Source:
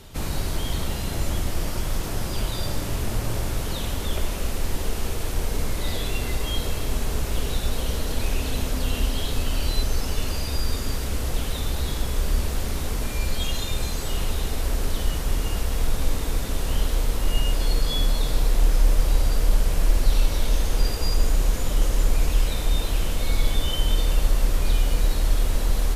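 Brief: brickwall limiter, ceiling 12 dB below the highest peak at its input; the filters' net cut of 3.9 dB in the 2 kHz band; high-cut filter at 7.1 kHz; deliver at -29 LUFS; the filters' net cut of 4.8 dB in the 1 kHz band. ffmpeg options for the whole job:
-af "lowpass=7100,equalizer=f=1000:t=o:g=-5.5,equalizer=f=2000:t=o:g=-3.5,volume=1.26,alimiter=limit=0.15:level=0:latency=1"

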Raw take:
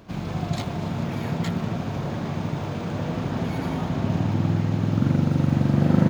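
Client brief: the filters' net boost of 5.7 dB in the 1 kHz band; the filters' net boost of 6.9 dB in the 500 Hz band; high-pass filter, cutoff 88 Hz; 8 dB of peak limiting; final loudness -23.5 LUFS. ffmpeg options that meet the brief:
-af "highpass=88,equalizer=f=500:t=o:g=7.5,equalizer=f=1000:t=o:g=4.5,volume=1.19,alimiter=limit=0.335:level=0:latency=1"

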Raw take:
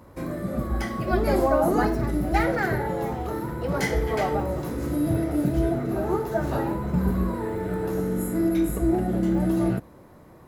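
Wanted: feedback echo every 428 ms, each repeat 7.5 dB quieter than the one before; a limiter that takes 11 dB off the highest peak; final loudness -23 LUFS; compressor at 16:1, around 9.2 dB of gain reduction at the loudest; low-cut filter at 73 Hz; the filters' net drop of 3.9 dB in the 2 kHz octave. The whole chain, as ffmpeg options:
-af "highpass=73,equalizer=f=2000:t=o:g=-5,acompressor=threshold=0.0447:ratio=16,alimiter=level_in=2:limit=0.0631:level=0:latency=1,volume=0.501,aecho=1:1:428|856|1284|1712|2140:0.422|0.177|0.0744|0.0312|0.0131,volume=5.01"

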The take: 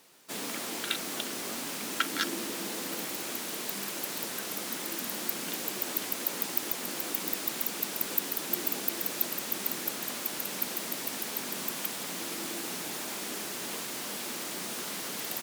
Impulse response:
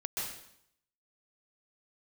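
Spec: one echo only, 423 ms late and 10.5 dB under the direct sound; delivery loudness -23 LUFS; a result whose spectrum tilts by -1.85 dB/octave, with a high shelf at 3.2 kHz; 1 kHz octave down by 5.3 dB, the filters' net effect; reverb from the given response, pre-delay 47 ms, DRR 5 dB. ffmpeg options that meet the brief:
-filter_complex "[0:a]equalizer=f=1000:t=o:g=-6.5,highshelf=f=3200:g=-6,aecho=1:1:423:0.299,asplit=2[s0][s1];[1:a]atrim=start_sample=2205,adelay=47[s2];[s1][s2]afir=irnorm=-1:irlink=0,volume=0.398[s3];[s0][s3]amix=inputs=2:normalize=0,volume=4.22"

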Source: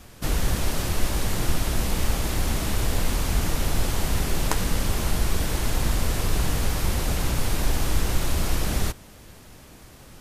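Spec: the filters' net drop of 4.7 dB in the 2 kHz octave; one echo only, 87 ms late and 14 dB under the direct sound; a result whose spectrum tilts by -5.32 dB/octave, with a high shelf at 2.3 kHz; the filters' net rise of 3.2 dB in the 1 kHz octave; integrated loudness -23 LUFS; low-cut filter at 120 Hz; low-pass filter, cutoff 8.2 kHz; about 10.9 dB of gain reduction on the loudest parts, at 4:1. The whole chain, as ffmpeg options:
-af "highpass=120,lowpass=8200,equalizer=f=1000:t=o:g=6.5,equalizer=f=2000:t=o:g=-4,highshelf=f=2300:g=-8.5,acompressor=threshold=0.02:ratio=4,aecho=1:1:87:0.2,volume=5.01"

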